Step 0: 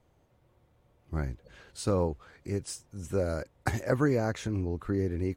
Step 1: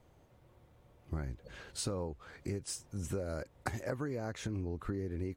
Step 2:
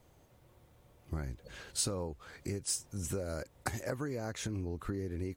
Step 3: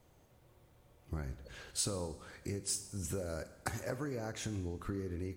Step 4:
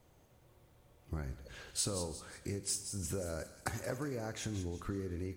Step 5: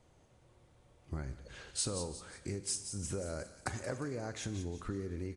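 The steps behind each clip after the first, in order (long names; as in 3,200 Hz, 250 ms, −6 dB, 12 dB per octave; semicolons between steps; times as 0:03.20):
downward compressor 10 to 1, threshold −37 dBFS, peak gain reduction 16.5 dB; level +3 dB
high-shelf EQ 4,400 Hz +9 dB
four-comb reverb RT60 1.1 s, combs from 30 ms, DRR 11.5 dB; level −2 dB
delay with a high-pass on its return 178 ms, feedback 44%, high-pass 3,000 Hz, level −8 dB
downsampling to 22,050 Hz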